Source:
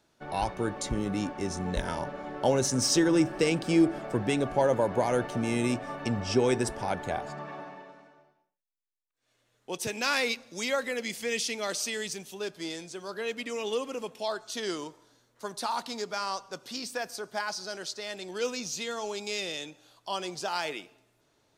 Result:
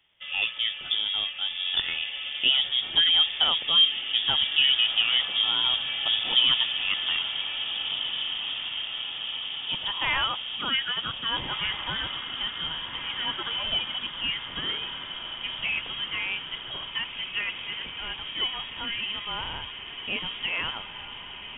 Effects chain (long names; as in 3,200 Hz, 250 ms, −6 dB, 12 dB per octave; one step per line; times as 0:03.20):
feedback delay with all-pass diffusion 1,676 ms, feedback 71%, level −8.5 dB
voice inversion scrambler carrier 3,500 Hz
level +2 dB